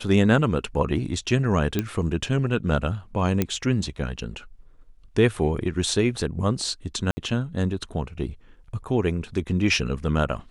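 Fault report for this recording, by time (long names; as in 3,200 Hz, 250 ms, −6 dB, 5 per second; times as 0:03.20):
0:01.79: click −10 dBFS
0:03.42: click −8 dBFS
0:07.11–0:07.17: drop-out 60 ms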